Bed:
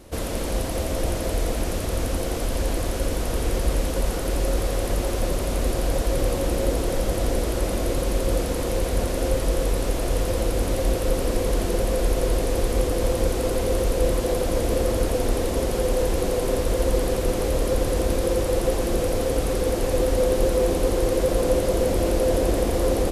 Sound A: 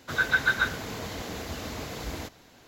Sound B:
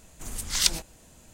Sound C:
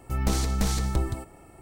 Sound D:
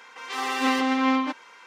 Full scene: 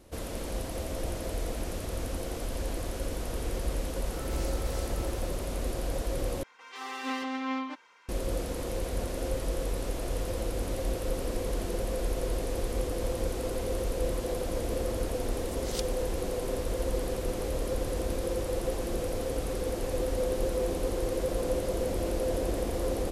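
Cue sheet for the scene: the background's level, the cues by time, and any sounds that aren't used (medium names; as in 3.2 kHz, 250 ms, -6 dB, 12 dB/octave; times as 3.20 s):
bed -9 dB
4.05 s: add C -18 dB + FDN reverb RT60 1 s, high-frequency decay 0.7×, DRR -4 dB
6.43 s: replace with D -10.5 dB
15.13 s: add B -16 dB
not used: A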